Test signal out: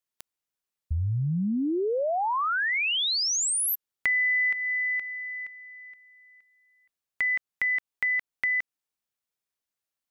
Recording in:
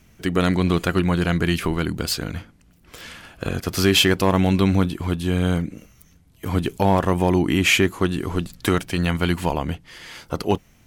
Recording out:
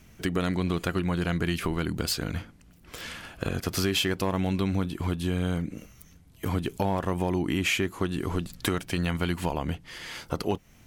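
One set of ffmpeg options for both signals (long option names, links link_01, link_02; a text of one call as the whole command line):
ffmpeg -i in.wav -af "acompressor=threshold=-26dB:ratio=3" out.wav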